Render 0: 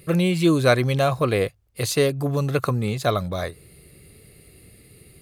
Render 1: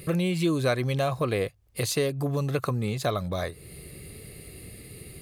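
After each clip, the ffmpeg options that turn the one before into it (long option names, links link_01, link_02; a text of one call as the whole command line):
ffmpeg -i in.wav -af "bandreject=frequency=1400:width=19,acompressor=threshold=-38dB:ratio=2,volume=5.5dB" out.wav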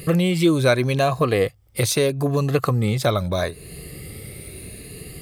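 ffmpeg -i in.wav -af "afftfilt=real='re*pow(10,6/40*sin(2*PI*(1.5*log(max(b,1)*sr/1024/100)/log(2)-(0.79)*(pts-256)/sr)))':imag='im*pow(10,6/40*sin(2*PI*(1.5*log(max(b,1)*sr/1024/100)/log(2)-(0.79)*(pts-256)/sr)))':win_size=1024:overlap=0.75,volume=6.5dB" out.wav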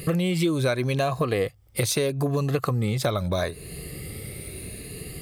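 ffmpeg -i in.wav -af "acompressor=threshold=-21dB:ratio=4" out.wav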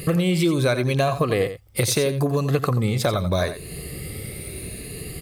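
ffmpeg -i in.wav -af "aecho=1:1:88:0.266,volume=3dB" out.wav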